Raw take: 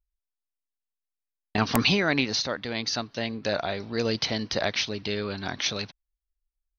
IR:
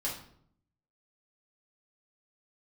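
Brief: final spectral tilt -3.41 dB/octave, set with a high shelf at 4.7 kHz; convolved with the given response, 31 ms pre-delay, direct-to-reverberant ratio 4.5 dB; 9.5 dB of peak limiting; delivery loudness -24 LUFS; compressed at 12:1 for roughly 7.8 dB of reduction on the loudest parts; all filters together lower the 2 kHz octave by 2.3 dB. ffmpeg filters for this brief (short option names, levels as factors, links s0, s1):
-filter_complex "[0:a]equalizer=f=2000:t=o:g=-5,highshelf=f=4700:g=9,acompressor=threshold=0.0562:ratio=12,alimiter=limit=0.119:level=0:latency=1,asplit=2[s0][s1];[1:a]atrim=start_sample=2205,adelay=31[s2];[s1][s2]afir=irnorm=-1:irlink=0,volume=0.398[s3];[s0][s3]amix=inputs=2:normalize=0,volume=2.11"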